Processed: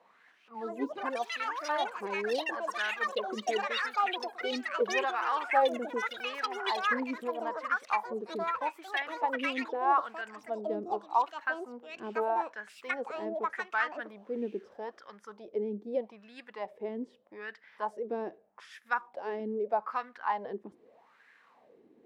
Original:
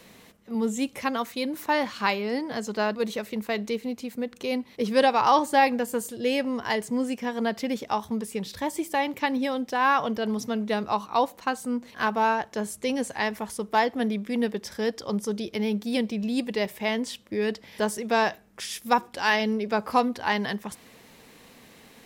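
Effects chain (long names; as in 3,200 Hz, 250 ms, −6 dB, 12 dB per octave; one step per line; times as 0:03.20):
LFO wah 0.81 Hz 330–1,700 Hz, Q 5.1
delay with pitch and tempo change per echo 272 ms, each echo +7 semitones, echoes 3
level +2.5 dB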